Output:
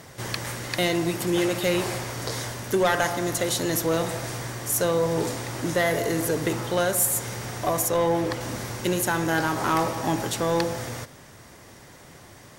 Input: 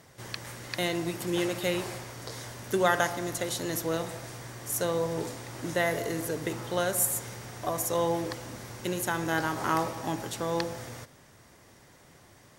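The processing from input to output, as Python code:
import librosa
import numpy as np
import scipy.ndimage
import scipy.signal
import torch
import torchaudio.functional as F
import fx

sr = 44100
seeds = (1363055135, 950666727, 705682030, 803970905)

p1 = fx.bass_treble(x, sr, bass_db=0, treble_db=-5, at=(7.88, 8.41))
p2 = fx.rider(p1, sr, range_db=5, speed_s=0.5)
p3 = p1 + (p2 * librosa.db_to_amplitude(-2.0))
p4 = 10.0 ** (-17.0 / 20.0) * np.tanh(p3 / 10.0 ** (-17.0 / 20.0))
y = p4 * librosa.db_to_amplitude(2.5)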